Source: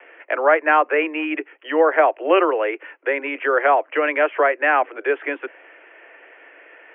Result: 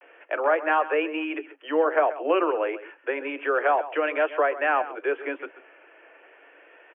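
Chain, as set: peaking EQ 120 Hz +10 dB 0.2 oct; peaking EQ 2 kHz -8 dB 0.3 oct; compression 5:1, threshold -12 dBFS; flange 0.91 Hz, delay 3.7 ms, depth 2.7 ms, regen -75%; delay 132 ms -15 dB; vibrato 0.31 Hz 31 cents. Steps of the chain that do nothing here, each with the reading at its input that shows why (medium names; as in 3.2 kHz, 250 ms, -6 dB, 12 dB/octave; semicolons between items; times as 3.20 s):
peaking EQ 120 Hz: input has nothing below 250 Hz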